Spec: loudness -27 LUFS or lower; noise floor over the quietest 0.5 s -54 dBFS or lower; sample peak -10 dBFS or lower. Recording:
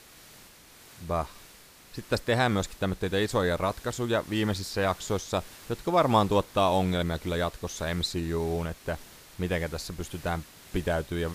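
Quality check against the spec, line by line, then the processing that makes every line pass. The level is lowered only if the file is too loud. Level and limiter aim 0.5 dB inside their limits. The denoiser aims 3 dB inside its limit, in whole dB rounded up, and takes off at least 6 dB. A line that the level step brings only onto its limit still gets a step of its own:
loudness -29.0 LUFS: OK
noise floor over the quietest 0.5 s -52 dBFS: fail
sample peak -9.0 dBFS: fail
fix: denoiser 6 dB, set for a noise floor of -52 dBFS; limiter -10.5 dBFS

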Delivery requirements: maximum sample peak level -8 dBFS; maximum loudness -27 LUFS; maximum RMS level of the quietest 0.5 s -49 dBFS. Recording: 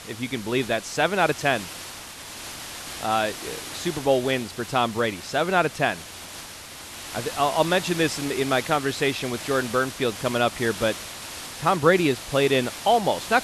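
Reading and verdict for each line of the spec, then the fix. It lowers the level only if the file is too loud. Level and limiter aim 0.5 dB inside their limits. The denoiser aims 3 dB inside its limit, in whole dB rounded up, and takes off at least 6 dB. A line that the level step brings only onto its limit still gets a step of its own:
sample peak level -5.5 dBFS: fail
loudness -24.0 LUFS: fail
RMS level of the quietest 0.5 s -40 dBFS: fail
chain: denoiser 9 dB, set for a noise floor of -40 dBFS; gain -3.5 dB

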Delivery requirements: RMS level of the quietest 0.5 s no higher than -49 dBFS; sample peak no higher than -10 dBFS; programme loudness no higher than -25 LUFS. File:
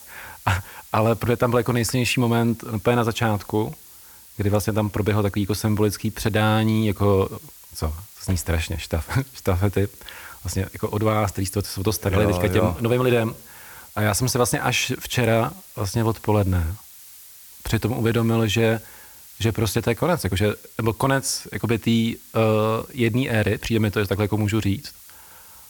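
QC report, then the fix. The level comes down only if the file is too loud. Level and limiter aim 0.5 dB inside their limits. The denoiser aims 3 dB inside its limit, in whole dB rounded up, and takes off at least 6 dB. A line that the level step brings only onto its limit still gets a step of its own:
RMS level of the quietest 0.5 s -46 dBFS: fail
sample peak -5.5 dBFS: fail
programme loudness -22.5 LUFS: fail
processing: denoiser 6 dB, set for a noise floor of -46 dBFS; gain -3 dB; limiter -10.5 dBFS

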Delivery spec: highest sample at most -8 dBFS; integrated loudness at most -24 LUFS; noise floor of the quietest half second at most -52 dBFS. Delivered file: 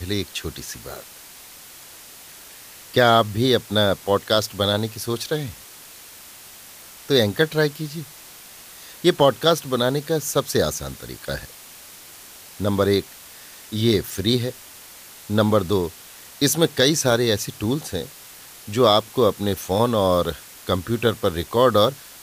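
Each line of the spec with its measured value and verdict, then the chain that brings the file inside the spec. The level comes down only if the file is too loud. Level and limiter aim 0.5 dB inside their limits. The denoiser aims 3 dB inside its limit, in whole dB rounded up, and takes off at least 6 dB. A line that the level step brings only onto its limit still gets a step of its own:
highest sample -4.0 dBFS: fail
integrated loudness -21.0 LUFS: fail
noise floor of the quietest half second -43 dBFS: fail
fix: denoiser 9 dB, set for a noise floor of -43 dBFS; gain -3.5 dB; limiter -8.5 dBFS

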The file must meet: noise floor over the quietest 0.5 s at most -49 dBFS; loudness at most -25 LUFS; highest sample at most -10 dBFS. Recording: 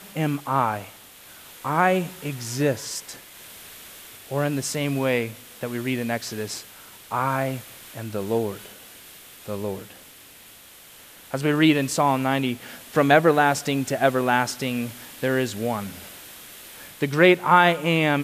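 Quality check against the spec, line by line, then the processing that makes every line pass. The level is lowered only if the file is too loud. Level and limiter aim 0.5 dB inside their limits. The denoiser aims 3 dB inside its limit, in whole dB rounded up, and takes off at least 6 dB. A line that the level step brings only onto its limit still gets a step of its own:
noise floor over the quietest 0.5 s -48 dBFS: fail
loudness -23.0 LUFS: fail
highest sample -3.5 dBFS: fail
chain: gain -2.5 dB; limiter -10.5 dBFS

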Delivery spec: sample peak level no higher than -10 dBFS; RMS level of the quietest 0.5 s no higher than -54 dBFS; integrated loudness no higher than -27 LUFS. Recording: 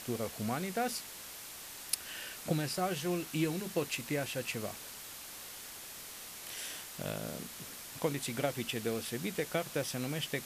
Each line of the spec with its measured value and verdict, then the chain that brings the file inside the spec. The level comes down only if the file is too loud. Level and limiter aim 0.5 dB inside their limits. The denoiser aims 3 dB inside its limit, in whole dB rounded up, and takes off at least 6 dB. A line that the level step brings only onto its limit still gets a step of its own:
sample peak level -12.0 dBFS: OK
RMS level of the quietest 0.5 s -47 dBFS: fail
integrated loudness -37.0 LUFS: OK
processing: denoiser 10 dB, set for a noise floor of -47 dBFS

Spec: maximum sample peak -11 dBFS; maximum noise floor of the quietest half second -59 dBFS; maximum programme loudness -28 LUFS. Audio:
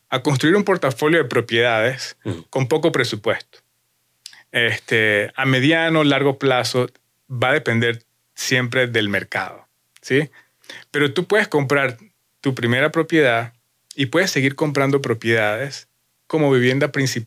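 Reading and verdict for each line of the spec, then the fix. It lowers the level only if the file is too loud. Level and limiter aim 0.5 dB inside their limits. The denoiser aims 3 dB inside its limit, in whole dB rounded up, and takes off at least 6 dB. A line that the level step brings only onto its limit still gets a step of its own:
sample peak -4.5 dBFS: fail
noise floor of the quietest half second -67 dBFS: OK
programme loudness -18.5 LUFS: fail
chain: gain -10 dB

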